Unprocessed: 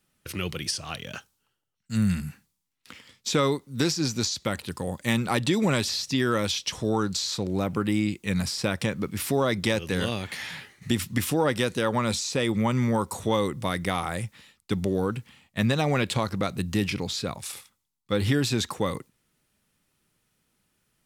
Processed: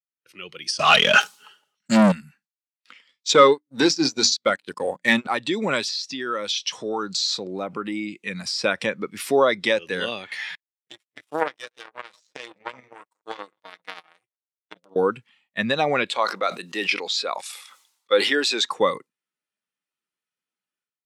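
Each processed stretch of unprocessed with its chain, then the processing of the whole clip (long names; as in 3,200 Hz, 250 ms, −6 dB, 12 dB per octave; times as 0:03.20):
0:00.79–0:02.12: comb filter 4.8 ms, depth 34% + leveller curve on the samples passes 5 + level that may fall only so fast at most 60 dB per second
0:03.29–0:05.27: mains-hum notches 60/120/180/240/300 Hz + transient designer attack 0 dB, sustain −12 dB + leveller curve on the samples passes 2
0:05.88–0:08.56: high-pass filter 76 Hz + downward compressor 2.5 to 1, threshold −28 dBFS
0:10.55–0:14.96: delay that plays each chunk backwards 127 ms, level −10.5 dB + comb filter 6.4 ms, depth 75% + power curve on the samples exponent 3
0:16.15–0:18.62: high-pass filter 370 Hz + level that may fall only so fast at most 49 dB per second
whole clip: meter weighting curve A; automatic gain control gain up to 12 dB; every bin expanded away from the loudest bin 1.5 to 1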